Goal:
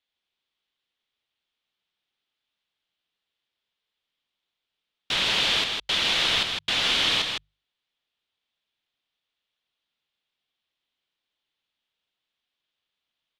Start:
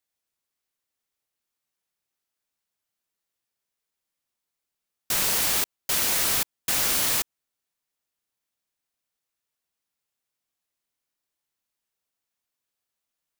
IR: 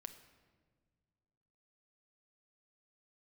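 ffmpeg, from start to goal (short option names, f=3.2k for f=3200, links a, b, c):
-filter_complex "[0:a]lowpass=f=3.4k:t=q:w=3.6,bandreject=f=50:t=h:w=6,bandreject=f=100:t=h:w=6,bandreject=f=150:t=h:w=6,asplit=2[a][b];[b]aecho=0:1:158:0.562[c];[a][c]amix=inputs=2:normalize=0"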